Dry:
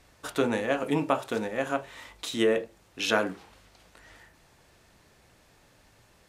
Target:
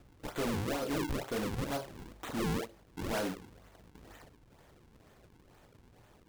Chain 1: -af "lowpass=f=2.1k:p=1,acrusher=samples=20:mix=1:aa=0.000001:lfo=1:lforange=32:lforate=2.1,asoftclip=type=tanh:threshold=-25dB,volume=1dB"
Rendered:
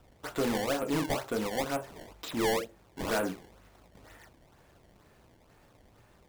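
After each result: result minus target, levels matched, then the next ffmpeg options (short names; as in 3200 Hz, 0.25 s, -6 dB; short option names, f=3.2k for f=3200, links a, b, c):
decimation with a swept rate: distortion -8 dB; soft clip: distortion -4 dB
-af "lowpass=f=2.1k:p=1,acrusher=samples=41:mix=1:aa=0.000001:lfo=1:lforange=65.6:lforate=2.1,asoftclip=type=tanh:threshold=-25dB,volume=1dB"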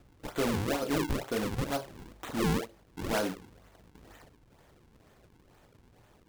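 soft clip: distortion -4 dB
-af "lowpass=f=2.1k:p=1,acrusher=samples=41:mix=1:aa=0.000001:lfo=1:lforange=65.6:lforate=2.1,asoftclip=type=tanh:threshold=-31.5dB,volume=1dB"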